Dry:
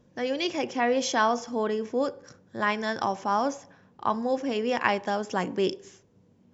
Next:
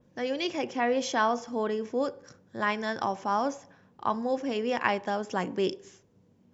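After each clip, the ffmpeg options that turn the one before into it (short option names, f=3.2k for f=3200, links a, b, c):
-af "adynamicequalizer=threshold=0.00562:dfrequency=5800:dqfactor=0.92:tfrequency=5800:tqfactor=0.92:attack=5:release=100:ratio=0.375:range=2:mode=cutabove:tftype=bell,volume=-2dB"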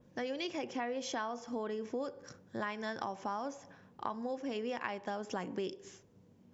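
-af "acompressor=threshold=-35dB:ratio=6"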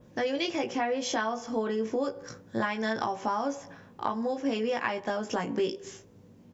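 -filter_complex "[0:a]asplit=2[a][b];[b]adelay=18,volume=-4dB[c];[a][c]amix=inputs=2:normalize=0,volume=7dB"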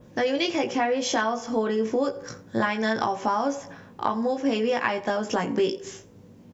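-af "aecho=1:1:86:0.0891,volume=5dB"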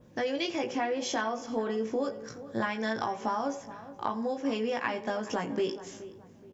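-filter_complex "[0:a]asplit=2[a][b];[b]adelay=424,lowpass=f=1.6k:p=1,volume=-14.5dB,asplit=2[c][d];[d]adelay=424,lowpass=f=1.6k:p=1,volume=0.34,asplit=2[e][f];[f]adelay=424,lowpass=f=1.6k:p=1,volume=0.34[g];[a][c][e][g]amix=inputs=4:normalize=0,volume=-6.5dB"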